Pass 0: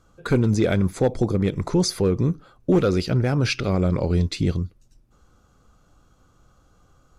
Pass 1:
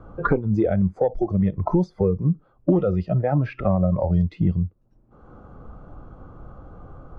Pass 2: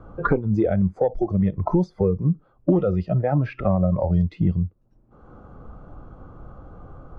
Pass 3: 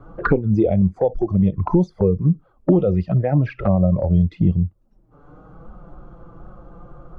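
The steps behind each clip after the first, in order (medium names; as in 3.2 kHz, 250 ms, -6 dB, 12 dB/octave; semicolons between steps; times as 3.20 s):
Chebyshev low-pass 870 Hz, order 2; spectral noise reduction 16 dB; three bands compressed up and down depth 100%; trim +3 dB
no audible change
touch-sensitive flanger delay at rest 7.8 ms, full sweep at -16.5 dBFS; trim +4 dB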